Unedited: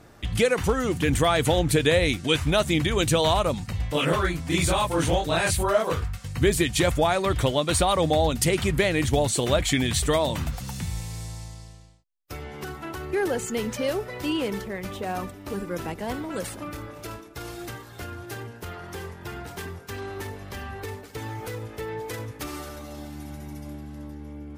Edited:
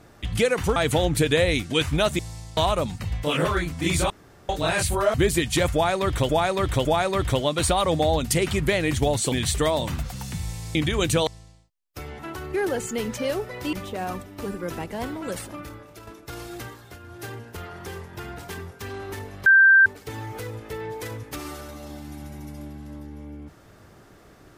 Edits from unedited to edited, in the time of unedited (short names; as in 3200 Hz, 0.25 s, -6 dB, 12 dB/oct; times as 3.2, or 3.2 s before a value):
0.76–1.3 cut
2.73–3.25 swap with 11.23–11.61
4.78–5.17 room tone
5.82–6.37 cut
6.96–7.52 loop, 3 plays
9.43–9.8 cut
12.53–12.78 cut
14.32–14.81 cut
16.48–17.15 fade out, to -9.5 dB
17.82–18.33 dip -8.5 dB, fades 0.24 s
20.54–20.94 bleep 1570 Hz -10.5 dBFS